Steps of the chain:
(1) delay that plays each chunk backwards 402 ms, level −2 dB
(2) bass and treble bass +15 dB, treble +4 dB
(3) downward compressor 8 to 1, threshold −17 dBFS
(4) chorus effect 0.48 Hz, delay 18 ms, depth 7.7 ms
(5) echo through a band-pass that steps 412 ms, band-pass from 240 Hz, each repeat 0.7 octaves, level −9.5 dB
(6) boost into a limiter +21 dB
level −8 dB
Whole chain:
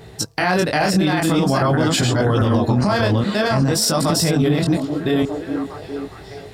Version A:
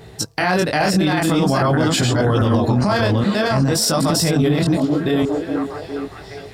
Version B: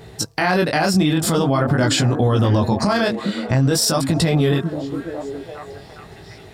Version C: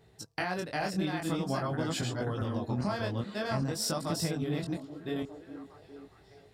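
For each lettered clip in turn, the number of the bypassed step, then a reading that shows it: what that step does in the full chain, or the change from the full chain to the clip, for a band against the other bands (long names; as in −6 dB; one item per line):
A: 3, average gain reduction 3.0 dB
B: 1, change in momentary loudness spread +4 LU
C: 6, change in crest factor +5.5 dB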